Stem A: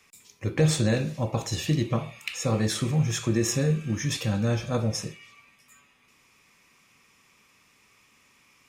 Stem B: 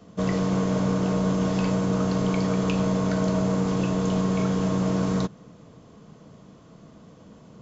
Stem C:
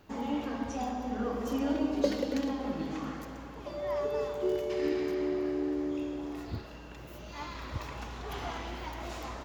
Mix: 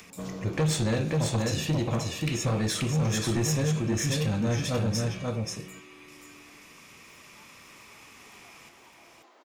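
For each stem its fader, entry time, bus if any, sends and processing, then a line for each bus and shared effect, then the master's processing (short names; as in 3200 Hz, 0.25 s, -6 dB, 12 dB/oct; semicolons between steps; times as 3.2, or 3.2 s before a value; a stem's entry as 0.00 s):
+0.5 dB, 0.00 s, no send, echo send -4 dB, upward compressor, threshold -44 dBFS
-8.5 dB, 0.00 s, no send, echo send -17.5 dB, auto duck -12 dB, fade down 0.90 s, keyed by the first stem
-15.0 dB, 0.00 s, no send, echo send -6 dB, steep high-pass 270 Hz; compressor, threshold -39 dBFS, peak gain reduction 16.5 dB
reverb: off
echo: echo 0.533 s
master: soft clip -20.5 dBFS, distortion -13 dB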